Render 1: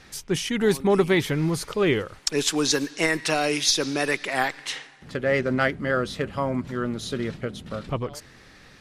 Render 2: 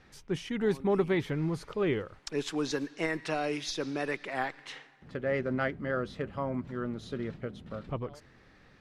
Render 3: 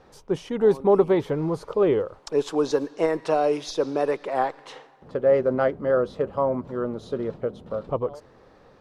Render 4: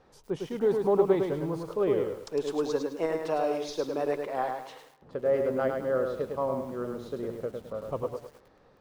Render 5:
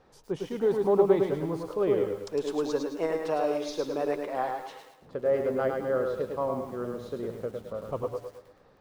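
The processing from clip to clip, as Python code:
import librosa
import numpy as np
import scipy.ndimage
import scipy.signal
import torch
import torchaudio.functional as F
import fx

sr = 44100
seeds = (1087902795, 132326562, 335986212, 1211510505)

y1 = fx.lowpass(x, sr, hz=1800.0, slope=6)
y1 = y1 * librosa.db_to_amplitude(-7.0)
y2 = fx.graphic_eq(y1, sr, hz=(500, 1000, 2000), db=(11, 8, -7))
y2 = y2 * librosa.db_to_amplitude(1.5)
y3 = fx.echo_crushed(y2, sr, ms=105, feedback_pct=35, bits=8, wet_db=-4.5)
y3 = y3 * librosa.db_to_amplitude(-7.0)
y4 = fx.echo_feedback(y3, sr, ms=115, feedback_pct=40, wet_db=-11)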